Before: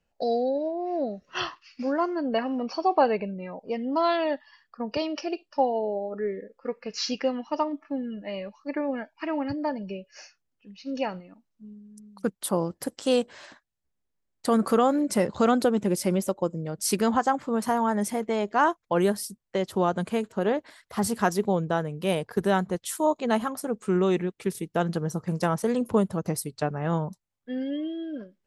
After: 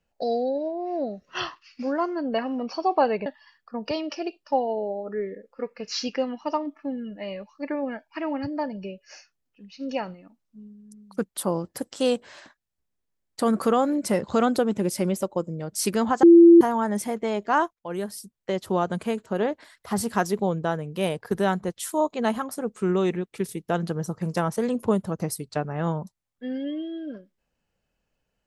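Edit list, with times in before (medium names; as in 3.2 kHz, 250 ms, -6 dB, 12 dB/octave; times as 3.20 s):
3.26–4.32 s: delete
17.29–17.67 s: bleep 339 Hz -7.5 dBFS
18.79–19.60 s: fade in, from -16 dB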